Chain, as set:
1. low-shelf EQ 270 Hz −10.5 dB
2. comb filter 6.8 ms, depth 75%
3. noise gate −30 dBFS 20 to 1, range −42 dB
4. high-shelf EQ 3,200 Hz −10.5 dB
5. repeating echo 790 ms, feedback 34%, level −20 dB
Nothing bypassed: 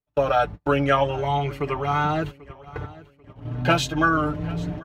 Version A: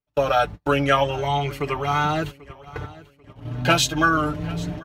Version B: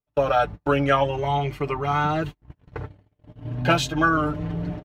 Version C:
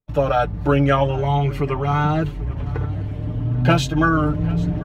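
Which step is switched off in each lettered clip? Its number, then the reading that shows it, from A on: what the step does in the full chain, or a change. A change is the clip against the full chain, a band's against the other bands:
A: 4, 8 kHz band +8.0 dB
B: 5, change in momentary loudness spread +1 LU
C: 1, 125 Hz band +8.0 dB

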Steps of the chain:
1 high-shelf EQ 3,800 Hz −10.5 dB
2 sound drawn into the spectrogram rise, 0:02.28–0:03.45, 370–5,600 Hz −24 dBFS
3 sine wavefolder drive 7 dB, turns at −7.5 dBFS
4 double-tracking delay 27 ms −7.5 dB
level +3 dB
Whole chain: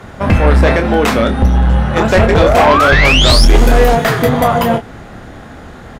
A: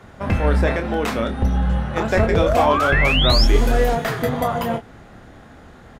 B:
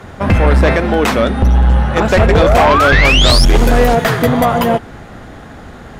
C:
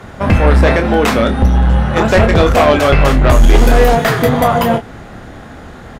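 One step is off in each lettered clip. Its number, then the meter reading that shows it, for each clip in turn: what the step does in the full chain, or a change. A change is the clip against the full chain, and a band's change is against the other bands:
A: 3, distortion level −11 dB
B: 4, change in crest factor −2.5 dB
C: 2, 4 kHz band −6.5 dB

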